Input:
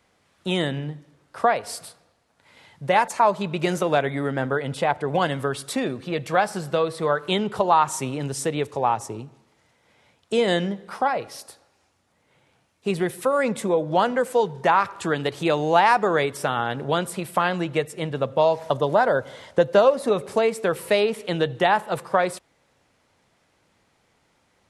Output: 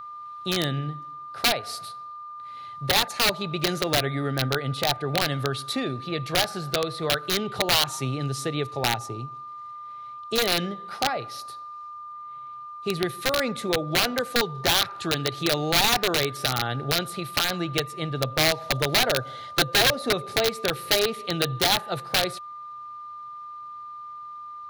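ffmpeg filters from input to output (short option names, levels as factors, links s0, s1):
-af "aeval=exprs='val(0)+0.0251*sin(2*PI*1200*n/s)':c=same,aeval=exprs='(mod(3.98*val(0)+1,2)-1)/3.98':c=same,equalizer=f=125:t=o:w=0.33:g=8,equalizer=f=200:t=o:w=0.33:g=-5,equalizer=f=500:t=o:w=0.33:g=-4,equalizer=f=1000:t=o:w=0.33:g=-8,equalizer=f=4000:t=o:w=0.33:g=9,equalizer=f=8000:t=o:w=0.33:g=-7,volume=0.794"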